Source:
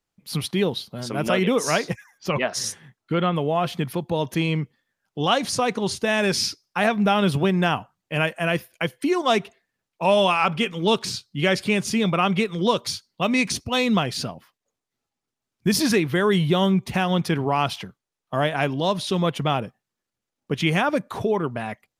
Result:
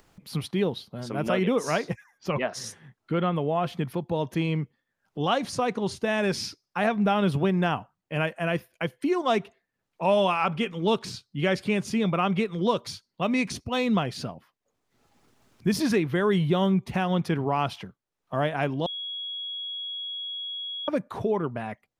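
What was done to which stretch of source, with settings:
18.86–20.88 bleep 3330 Hz -23.5 dBFS
whole clip: high shelf 2600 Hz -8 dB; upward compressor, threshold -37 dBFS; gain -3 dB

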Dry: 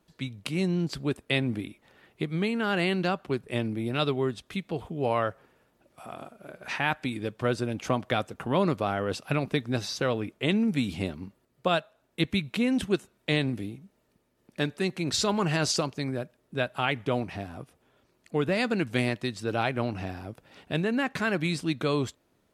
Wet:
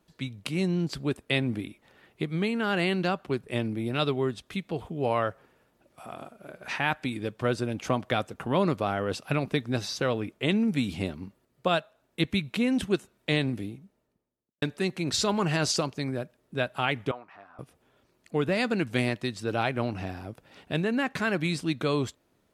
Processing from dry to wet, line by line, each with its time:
13.58–14.62 studio fade out
17.11–17.59 band-pass 1200 Hz, Q 2.9

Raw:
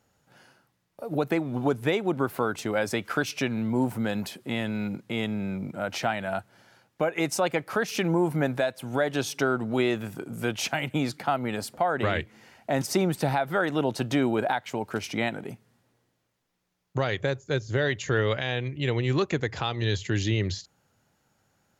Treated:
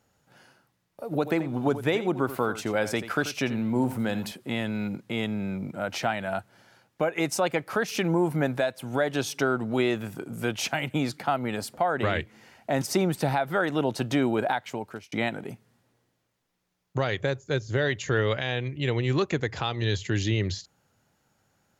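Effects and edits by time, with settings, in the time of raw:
1.04–4.32 echo 85 ms -13 dB
14.47–15.12 fade out equal-power

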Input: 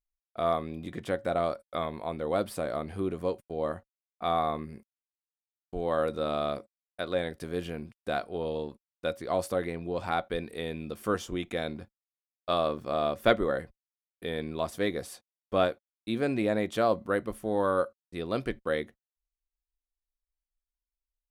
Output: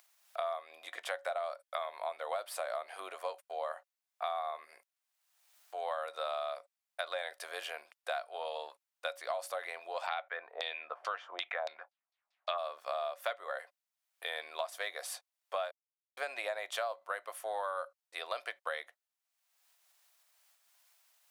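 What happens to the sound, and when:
10.06–12.57 LFO low-pass saw down 1.4 Hz -> 6.8 Hz 630–4900 Hz
15.71–16.17 mute
whole clip: upward compressor, threshold -47 dBFS; Chebyshev high-pass 630 Hz, order 4; compressor 8:1, threshold -38 dBFS; gain +4.5 dB

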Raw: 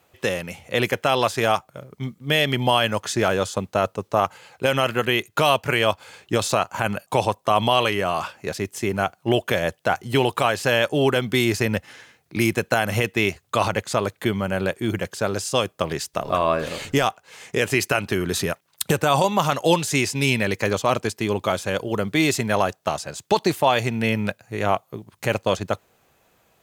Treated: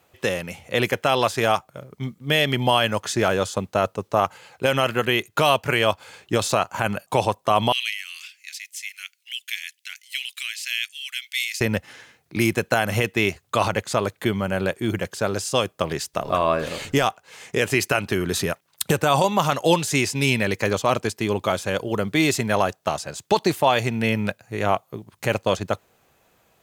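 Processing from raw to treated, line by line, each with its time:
7.72–11.61 elliptic high-pass 2100 Hz, stop band 80 dB

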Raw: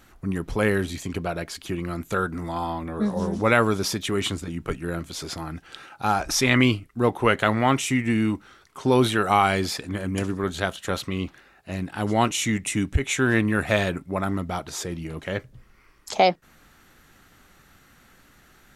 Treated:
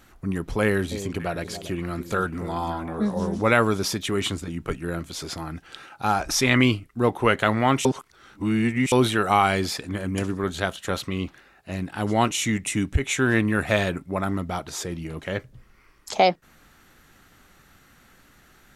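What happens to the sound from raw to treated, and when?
0.63–3.01 echo with dull and thin repeats by turns 0.283 s, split 830 Hz, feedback 56%, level -10.5 dB
7.85–8.92 reverse

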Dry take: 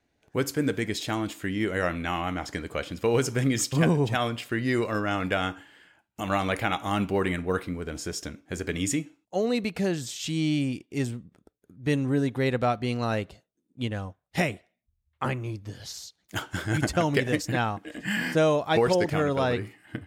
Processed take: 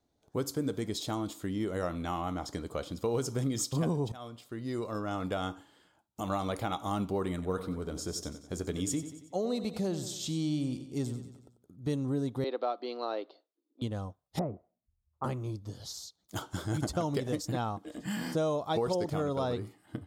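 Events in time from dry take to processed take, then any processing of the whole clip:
4.12–5.5 fade in, from -17 dB
7.33–11.87 feedback echo 92 ms, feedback 51%, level -12.5 dB
12.44–13.82 Chebyshev band-pass 300–4600 Hz, order 4
14.39–15.24 LPF 1200 Hz 24 dB/oct
whole clip: band shelf 2100 Hz -11.5 dB 1.1 oct; compressor 2:1, threshold -27 dBFS; gain -3 dB

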